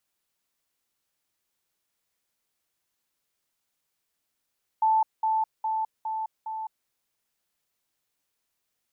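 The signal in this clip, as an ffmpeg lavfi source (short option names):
-f lavfi -i "aevalsrc='pow(10,(-18.5-3*floor(t/0.41))/20)*sin(2*PI*879*t)*clip(min(mod(t,0.41),0.21-mod(t,0.41))/0.005,0,1)':d=2.05:s=44100"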